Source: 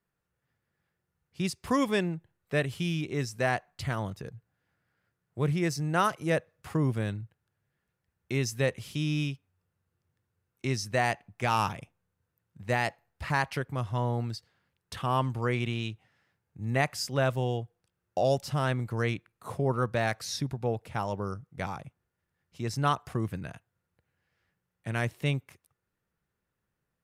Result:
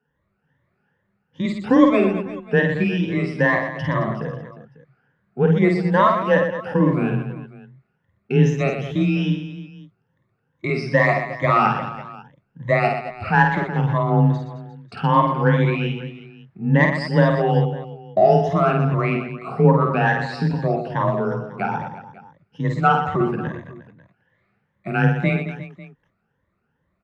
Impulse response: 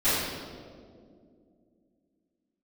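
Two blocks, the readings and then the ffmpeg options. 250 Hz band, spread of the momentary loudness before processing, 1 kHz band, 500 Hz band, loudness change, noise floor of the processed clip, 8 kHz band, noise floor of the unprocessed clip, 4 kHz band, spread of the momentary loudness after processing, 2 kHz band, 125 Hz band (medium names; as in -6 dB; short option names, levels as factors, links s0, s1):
+13.0 dB, 11 LU, +11.5 dB, +12.0 dB, +11.0 dB, -72 dBFS, no reading, -84 dBFS, +2.0 dB, 14 LU, +11.0 dB, +10.5 dB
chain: -filter_complex "[0:a]afftfilt=real='re*pow(10,20/40*sin(2*PI*(1.1*log(max(b,1)*sr/1024/100)/log(2)-(2.4)*(pts-256)/sr)))':imag='im*pow(10,20/40*sin(2*PI*(1.1*log(max(b,1)*sr/1024/100)/log(2)-(2.4)*(pts-256)/sr)))':win_size=1024:overlap=0.75,lowpass=2100,asplit=2[s0][s1];[s1]asoftclip=type=tanh:threshold=0.141,volume=0.251[s2];[s0][s2]amix=inputs=2:normalize=0,afreqshift=22,aecho=1:1:50|120|218|355.2|547.3:0.631|0.398|0.251|0.158|0.1,volume=1.58"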